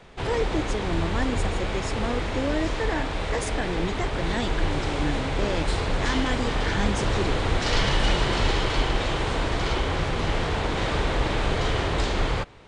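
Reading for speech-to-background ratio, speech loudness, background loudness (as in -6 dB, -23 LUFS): -5.0 dB, -31.5 LUFS, -26.5 LUFS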